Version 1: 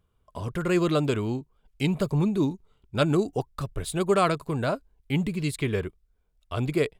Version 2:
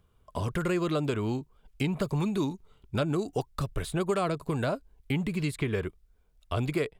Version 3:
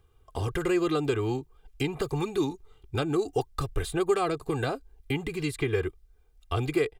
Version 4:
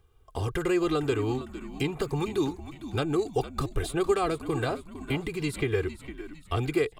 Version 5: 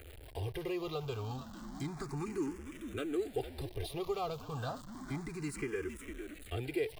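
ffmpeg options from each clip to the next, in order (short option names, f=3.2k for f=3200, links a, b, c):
-filter_complex "[0:a]acrossover=split=860|2000[a][b][c];[a]acompressor=threshold=-32dB:ratio=4[d];[b]acompressor=threshold=-44dB:ratio=4[e];[c]acompressor=threshold=-47dB:ratio=4[f];[d][e][f]amix=inputs=3:normalize=0,volume=4.5dB"
-af "aecho=1:1:2.5:0.75"
-filter_complex "[0:a]asplit=5[a][b][c][d][e];[b]adelay=456,afreqshift=-72,volume=-13dB[f];[c]adelay=912,afreqshift=-144,volume=-20.1dB[g];[d]adelay=1368,afreqshift=-216,volume=-27.3dB[h];[e]adelay=1824,afreqshift=-288,volume=-34.4dB[i];[a][f][g][h][i]amix=inputs=5:normalize=0"
-filter_complex "[0:a]aeval=exprs='val(0)+0.5*0.0188*sgn(val(0))':c=same,asplit=2[a][b];[b]afreqshift=0.31[c];[a][c]amix=inputs=2:normalize=1,volume=-8.5dB"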